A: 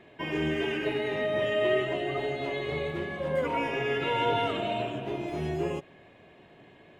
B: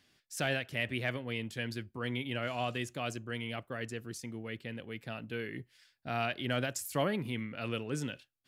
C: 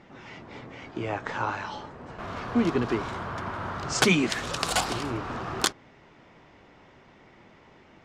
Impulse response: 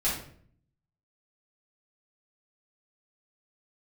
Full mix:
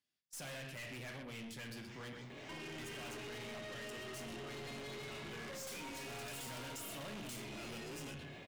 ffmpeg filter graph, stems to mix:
-filter_complex "[0:a]acrossover=split=180|1200[link_01][link_02][link_03];[link_01]acompressor=threshold=-48dB:ratio=4[link_04];[link_02]acompressor=threshold=-41dB:ratio=4[link_05];[link_03]acompressor=threshold=-45dB:ratio=4[link_06];[link_04][link_05][link_06]amix=inputs=3:normalize=0,highpass=55,equalizer=frequency=5100:width=0.56:gain=6,adelay=2300,volume=-1dB,asplit=2[link_07][link_08];[link_08]volume=-13.5dB[link_09];[1:a]highpass=frequency=84:width=0.5412,highpass=frequency=84:width=1.3066,volume=-5.5dB,asplit=3[link_10][link_11][link_12];[link_10]atrim=end=2.13,asetpts=PTS-STARTPTS,afade=type=out:start_time=2.126:duration=0.004:curve=hsin[link_13];[link_11]atrim=start=2.13:end=2.78,asetpts=PTS-STARTPTS,volume=0[link_14];[link_12]atrim=start=2.78,asetpts=PTS-STARTPTS,afade=type=in:duration=0.004:curve=hsin[link_15];[link_13][link_14][link_15]concat=n=3:v=0:a=1,asplit=3[link_16][link_17][link_18];[link_17]volume=-13.5dB[link_19];[link_18]volume=-12dB[link_20];[2:a]aemphasis=mode=production:type=bsi,adelay=1650,volume=-14.5dB,asplit=2[link_21][link_22];[link_22]volume=-17dB[link_23];[link_07][link_21]amix=inputs=2:normalize=0,equalizer=frequency=180:width=0.38:gain=4,acompressor=threshold=-40dB:ratio=6,volume=0dB[link_24];[3:a]atrim=start_sample=2205[link_25];[link_09][link_19][link_23]amix=inputs=3:normalize=0[link_26];[link_26][link_25]afir=irnorm=-1:irlink=0[link_27];[link_20]aecho=0:1:127:1[link_28];[link_16][link_24][link_27][link_28]amix=inputs=4:normalize=0,agate=range=-21dB:threshold=-51dB:ratio=16:detection=peak,highshelf=frequency=3600:gain=7,aeval=exprs='(tanh(178*val(0)+0.15)-tanh(0.15))/178':channel_layout=same"

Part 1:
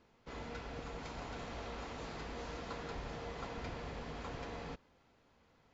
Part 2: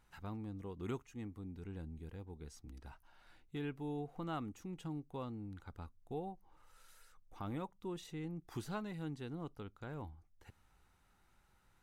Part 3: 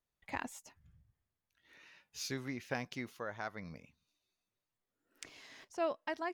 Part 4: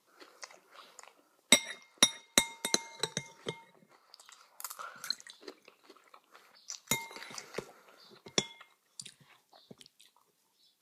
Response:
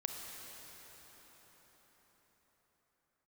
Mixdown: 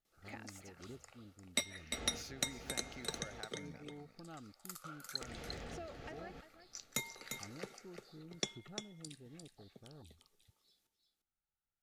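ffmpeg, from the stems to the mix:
-filter_complex "[0:a]adelay=1650,volume=-0.5dB,asplit=3[link_01][link_02][link_03];[link_01]atrim=end=3.41,asetpts=PTS-STARTPTS,afade=type=out:start_time=3.406:duration=0.004:curve=hsin[link_04];[link_02]atrim=start=3.41:end=5.21,asetpts=PTS-STARTPTS,volume=0[link_05];[link_03]atrim=start=5.21,asetpts=PTS-STARTPTS,afade=type=in:duration=0.004:curve=hsin[link_06];[link_04][link_05][link_06]concat=n=3:v=0:a=1[link_07];[1:a]afwtdn=0.00501,volume=-10.5dB[link_08];[2:a]acompressor=threshold=-45dB:ratio=6,volume=-2dB,asplit=3[link_09][link_10][link_11];[link_10]volume=-12dB[link_12];[3:a]alimiter=limit=-11.5dB:level=0:latency=1:release=341,adelay=50,volume=-6.5dB,asplit=2[link_13][link_14];[link_14]volume=-7dB[link_15];[link_11]apad=whole_len=325675[link_16];[link_07][link_16]sidechaincompress=threshold=-56dB:ratio=8:attack=16:release=334[link_17];[link_12][link_15]amix=inputs=2:normalize=0,aecho=0:1:349:1[link_18];[link_17][link_08][link_09][link_13][link_18]amix=inputs=5:normalize=0,asuperstop=centerf=1000:order=4:qfactor=4.8"

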